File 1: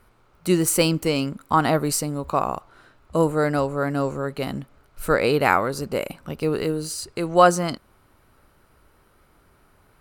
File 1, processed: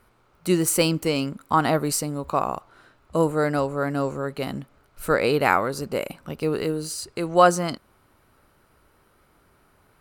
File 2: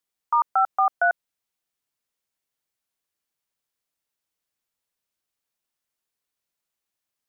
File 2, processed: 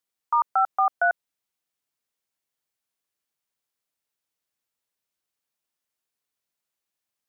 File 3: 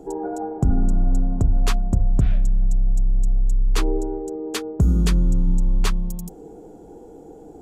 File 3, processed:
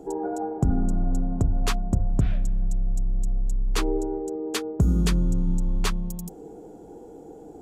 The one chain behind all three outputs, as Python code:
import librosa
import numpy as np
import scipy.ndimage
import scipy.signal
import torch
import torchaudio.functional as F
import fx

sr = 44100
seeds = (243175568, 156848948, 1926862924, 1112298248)

y = fx.low_shelf(x, sr, hz=61.0, db=-6.5)
y = F.gain(torch.from_numpy(y), -1.0).numpy()